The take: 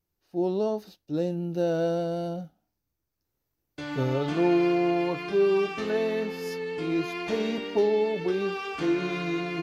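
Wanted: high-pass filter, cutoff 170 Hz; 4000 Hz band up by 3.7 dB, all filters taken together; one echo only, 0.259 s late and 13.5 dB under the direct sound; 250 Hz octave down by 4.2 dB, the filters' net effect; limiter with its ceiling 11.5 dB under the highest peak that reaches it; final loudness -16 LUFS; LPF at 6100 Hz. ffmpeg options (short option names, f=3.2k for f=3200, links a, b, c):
-af "highpass=170,lowpass=6.1k,equalizer=f=250:t=o:g=-6.5,equalizer=f=4k:t=o:g=5.5,alimiter=level_in=1dB:limit=-24dB:level=0:latency=1,volume=-1dB,aecho=1:1:259:0.211,volume=17.5dB"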